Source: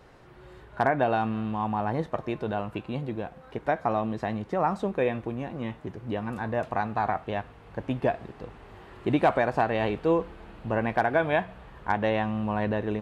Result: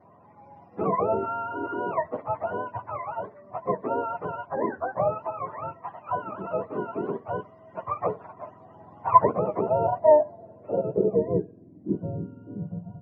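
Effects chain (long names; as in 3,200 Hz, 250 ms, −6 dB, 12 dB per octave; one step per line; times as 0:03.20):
frequency axis turned over on the octave scale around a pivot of 550 Hz
hollow resonant body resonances 660/1,000/1,900 Hz, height 11 dB, ringing for 25 ms
low-pass filter sweep 1,100 Hz → 180 Hz, 0:09.35–0:12.71
level −4.5 dB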